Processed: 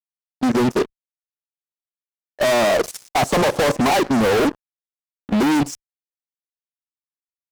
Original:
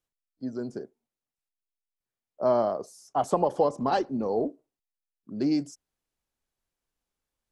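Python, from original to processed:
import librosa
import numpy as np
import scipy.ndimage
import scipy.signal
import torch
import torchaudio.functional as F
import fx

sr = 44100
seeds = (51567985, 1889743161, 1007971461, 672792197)

y = fx.fuzz(x, sr, gain_db=45.0, gate_db=-49.0)
y = fx.level_steps(y, sr, step_db=16)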